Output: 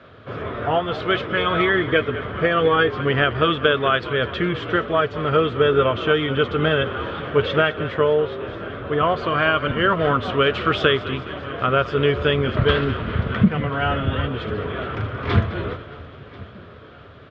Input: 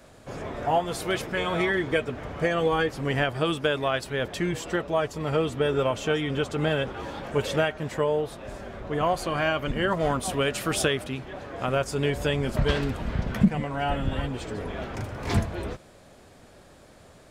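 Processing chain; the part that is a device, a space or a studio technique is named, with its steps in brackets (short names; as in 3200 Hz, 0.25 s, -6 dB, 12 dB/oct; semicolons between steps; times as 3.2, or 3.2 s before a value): LPF 8400 Hz; bell 1300 Hz +6 dB 0.79 oct; frequency-shifting delay pedal into a guitar cabinet (frequency-shifting echo 0.208 s, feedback 62%, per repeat -58 Hz, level -15 dB; speaker cabinet 77–3600 Hz, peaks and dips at 80 Hz +7 dB, 110 Hz +6 dB, 430 Hz +5 dB, 840 Hz -7 dB, 1300 Hz +4 dB, 3300 Hz +6 dB); feedback echo 1.039 s, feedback 58%, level -21 dB; gain +3.5 dB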